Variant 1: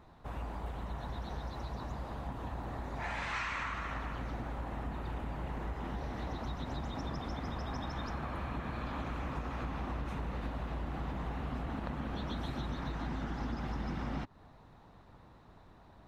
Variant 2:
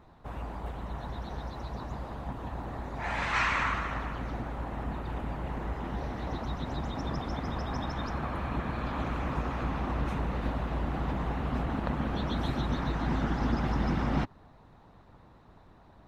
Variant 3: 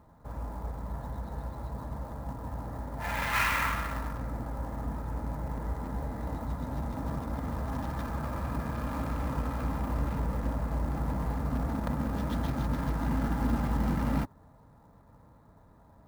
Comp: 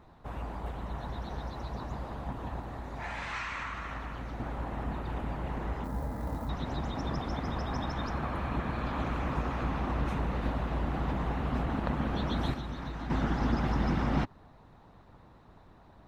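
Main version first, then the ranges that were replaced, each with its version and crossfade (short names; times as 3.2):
2
2.6–4.4 from 1
5.84–6.49 from 3
12.54–13.1 from 1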